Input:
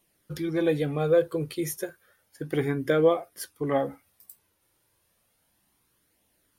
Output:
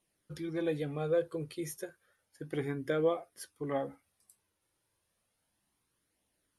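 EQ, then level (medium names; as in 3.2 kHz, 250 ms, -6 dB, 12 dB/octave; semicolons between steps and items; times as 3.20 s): steep low-pass 12 kHz 96 dB/octave; -8.5 dB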